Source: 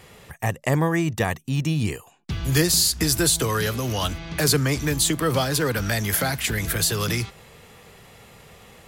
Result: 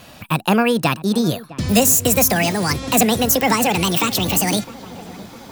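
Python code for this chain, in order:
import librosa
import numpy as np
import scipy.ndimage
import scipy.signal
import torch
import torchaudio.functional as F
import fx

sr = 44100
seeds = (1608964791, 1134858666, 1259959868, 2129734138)

y = fx.speed_glide(x, sr, from_pct=138, to_pct=184)
y = fx.echo_filtered(y, sr, ms=658, feedback_pct=71, hz=1300.0, wet_db=-17.5)
y = y * 10.0 ** (5.5 / 20.0)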